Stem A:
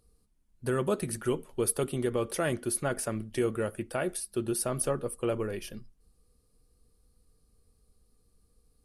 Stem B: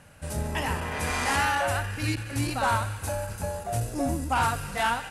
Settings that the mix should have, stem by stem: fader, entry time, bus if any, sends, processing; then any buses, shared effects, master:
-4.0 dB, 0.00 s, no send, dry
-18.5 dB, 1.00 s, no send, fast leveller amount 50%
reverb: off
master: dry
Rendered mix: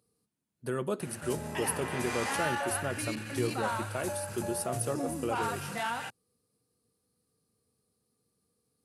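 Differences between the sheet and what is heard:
stem B -18.5 dB -> -9.0 dB; master: extra HPF 110 Hz 24 dB/oct

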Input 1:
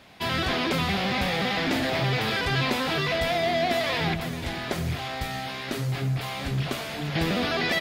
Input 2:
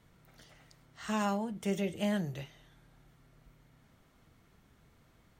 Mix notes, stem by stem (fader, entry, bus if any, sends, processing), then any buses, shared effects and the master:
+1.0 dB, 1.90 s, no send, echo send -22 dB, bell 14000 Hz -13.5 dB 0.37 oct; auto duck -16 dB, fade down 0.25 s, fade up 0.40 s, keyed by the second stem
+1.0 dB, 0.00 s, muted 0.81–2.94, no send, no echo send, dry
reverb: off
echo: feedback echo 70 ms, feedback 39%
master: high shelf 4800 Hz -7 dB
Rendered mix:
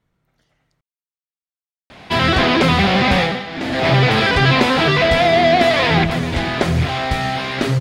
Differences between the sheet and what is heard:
stem 1 +1.0 dB -> +12.0 dB; stem 2 +1.0 dB -> -6.0 dB

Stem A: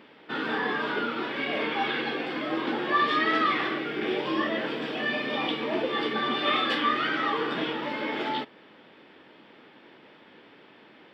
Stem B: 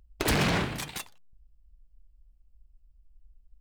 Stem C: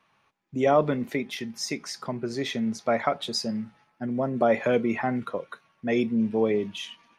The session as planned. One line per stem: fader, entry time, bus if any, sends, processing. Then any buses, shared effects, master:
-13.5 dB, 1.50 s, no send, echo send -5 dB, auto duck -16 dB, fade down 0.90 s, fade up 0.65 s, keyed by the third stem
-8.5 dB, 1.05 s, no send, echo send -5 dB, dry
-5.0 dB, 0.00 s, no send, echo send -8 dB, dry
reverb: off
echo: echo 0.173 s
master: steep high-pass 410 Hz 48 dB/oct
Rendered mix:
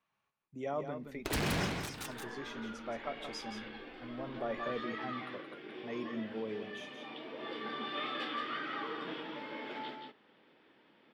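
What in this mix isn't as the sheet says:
stem C -5.0 dB -> -16.5 dB; master: missing steep high-pass 410 Hz 48 dB/oct

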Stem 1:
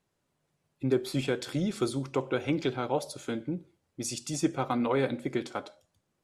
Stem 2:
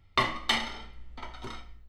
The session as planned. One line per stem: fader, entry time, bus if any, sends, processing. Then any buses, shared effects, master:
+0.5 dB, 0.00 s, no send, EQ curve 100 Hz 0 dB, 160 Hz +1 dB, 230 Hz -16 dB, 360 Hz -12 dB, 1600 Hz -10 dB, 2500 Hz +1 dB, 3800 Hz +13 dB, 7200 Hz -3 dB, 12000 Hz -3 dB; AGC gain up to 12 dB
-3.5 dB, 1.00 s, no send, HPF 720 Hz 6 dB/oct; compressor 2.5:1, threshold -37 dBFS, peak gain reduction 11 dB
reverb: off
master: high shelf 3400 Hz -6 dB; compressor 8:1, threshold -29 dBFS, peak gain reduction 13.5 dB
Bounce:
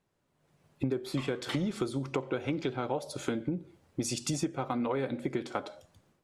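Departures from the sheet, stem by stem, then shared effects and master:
stem 1: missing EQ curve 100 Hz 0 dB, 160 Hz +1 dB, 230 Hz -16 dB, 360 Hz -12 dB, 1600 Hz -10 dB, 2500 Hz +1 dB, 3800 Hz +13 dB, 7200 Hz -3 dB, 12000 Hz -3 dB; stem 2: missing compressor 2.5:1, threshold -37 dBFS, peak gain reduction 11 dB

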